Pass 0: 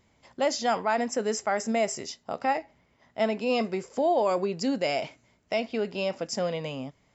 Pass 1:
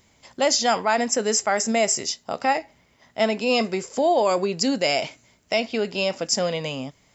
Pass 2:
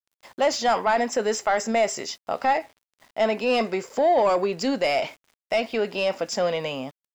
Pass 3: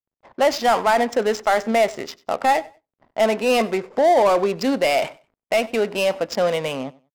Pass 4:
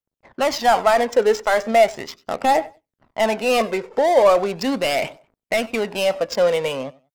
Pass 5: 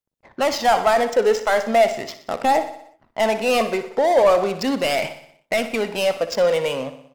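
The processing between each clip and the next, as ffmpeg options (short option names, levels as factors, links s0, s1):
-af "highshelf=f=3300:g=10.5,volume=1.58"
-filter_complex "[0:a]asplit=2[s0][s1];[s1]highpass=f=720:p=1,volume=5.01,asoftclip=type=tanh:threshold=0.447[s2];[s0][s2]amix=inputs=2:normalize=0,lowpass=f=1400:p=1,volume=0.501,aeval=exprs='val(0)*gte(abs(val(0)),0.00422)':c=same,volume=0.75"
-af "adynamicsmooth=sensitivity=6.5:basefreq=600,aecho=1:1:95|190:0.0794|0.0175,volume=1.58"
-af "aphaser=in_gain=1:out_gain=1:delay=2.3:decay=0.45:speed=0.38:type=triangular"
-filter_complex "[0:a]asplit=2[s0][s1];[s1]aecho=0:1:61|122|183|244|305|366:0.224|0.128|0.0727|0.0415|0.0236|0.0135[s2];[s0][s2]amix=inputs=2:normalize=0,asoftclip=type=tanh:threshold=0.473"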